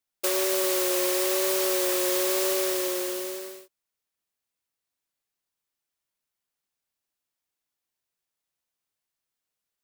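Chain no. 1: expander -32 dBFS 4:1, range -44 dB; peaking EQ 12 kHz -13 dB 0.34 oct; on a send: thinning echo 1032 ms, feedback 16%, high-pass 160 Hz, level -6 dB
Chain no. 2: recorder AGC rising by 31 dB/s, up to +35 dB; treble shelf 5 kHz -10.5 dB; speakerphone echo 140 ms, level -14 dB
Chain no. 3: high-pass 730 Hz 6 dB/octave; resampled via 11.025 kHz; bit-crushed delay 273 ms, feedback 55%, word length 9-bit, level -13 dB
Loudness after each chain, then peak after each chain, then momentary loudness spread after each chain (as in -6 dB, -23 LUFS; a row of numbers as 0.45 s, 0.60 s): -25.5 LUFS, -28.0 LUFS, -31.0 LUFS; -12.0 dBFS, -16.5 dBFS, -19.0 dBFS; 12 LU, 5 LU, 9 LU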